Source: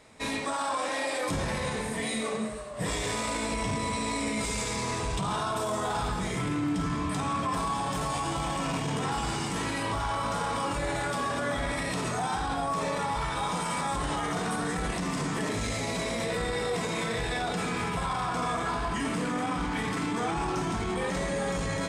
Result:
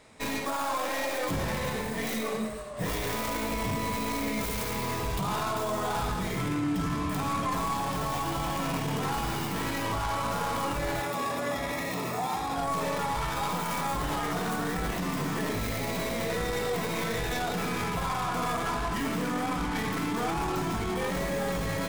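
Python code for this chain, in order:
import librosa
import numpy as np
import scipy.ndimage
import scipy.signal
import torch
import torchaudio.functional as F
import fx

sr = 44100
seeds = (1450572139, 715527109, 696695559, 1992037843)

y = fx.tracing_dist(x, sr, depth_ms=0.29)
y = fx.notch_comb(y, sr, f0_hz=1500.0, at=(11.01, 12.56))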